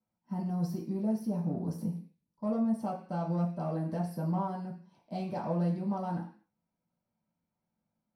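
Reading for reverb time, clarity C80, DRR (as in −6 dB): 0.45 s, 13.0 dB, −5.0 dB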